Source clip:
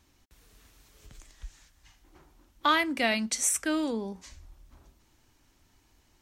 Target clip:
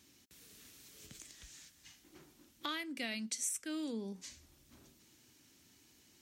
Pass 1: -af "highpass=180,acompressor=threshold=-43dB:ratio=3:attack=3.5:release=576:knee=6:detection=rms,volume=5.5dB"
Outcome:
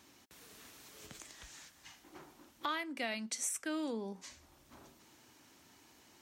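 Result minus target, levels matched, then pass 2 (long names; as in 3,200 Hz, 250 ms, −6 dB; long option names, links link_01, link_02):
1,000 Hz band +5.5 dB
-af "highpass=180,equalizer=frequency=890:width=0.67:gain=-13,acompressor=threshold=-43dB:ratio=3:attack=3.5:release=576:knee=6:detection=rms,volume=5.5dB"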